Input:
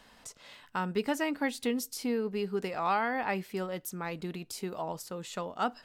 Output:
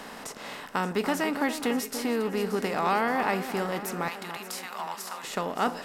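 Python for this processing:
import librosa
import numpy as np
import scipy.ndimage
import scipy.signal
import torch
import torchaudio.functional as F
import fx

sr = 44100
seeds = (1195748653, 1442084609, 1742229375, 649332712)

y = fx.bin_compress(x, sr, power=0.6)
y = fx.highpass(y, sr, hz=870.0, slope=24, at=(4.08, 5.24))
y = fx.echo_alternate(y, sr, ms=288, hz=1700.0, feedback_pct=70, wet_db=-9.5)
y = y * 10.0 ** (1.0 / 20.0)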